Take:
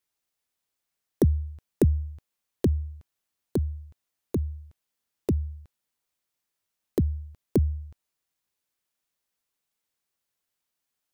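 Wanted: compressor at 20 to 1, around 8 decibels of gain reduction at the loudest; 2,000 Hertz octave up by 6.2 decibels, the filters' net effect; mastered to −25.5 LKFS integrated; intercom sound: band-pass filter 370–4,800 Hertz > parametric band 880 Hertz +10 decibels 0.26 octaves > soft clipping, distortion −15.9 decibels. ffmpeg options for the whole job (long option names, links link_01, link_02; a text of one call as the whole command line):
ffmpeg -i in.wav -af "equalizer=frequency=2000:width_type=o:gain=7.5,acompressor=threshold=-23dB:ratio=20,highpass=370,lowpass=4800,equalizer=frequency=880:width_type=o:width=0.26:gain=10,asoftclip=threshold=-19dB,volume=15.5dB" out.wav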